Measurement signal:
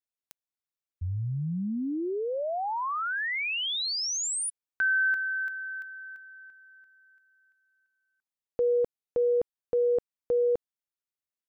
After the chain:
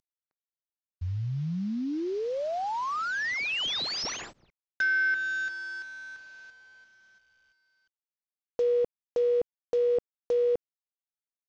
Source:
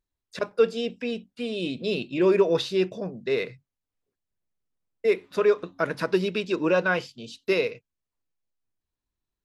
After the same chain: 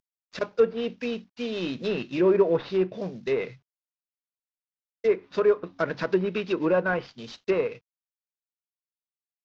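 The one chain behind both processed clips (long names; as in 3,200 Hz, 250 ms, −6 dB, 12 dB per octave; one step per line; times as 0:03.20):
variable-slope delta modulation 32 kbit/s
treble cut that deepens with the level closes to 1,600 Hz, closed at −20 dBFS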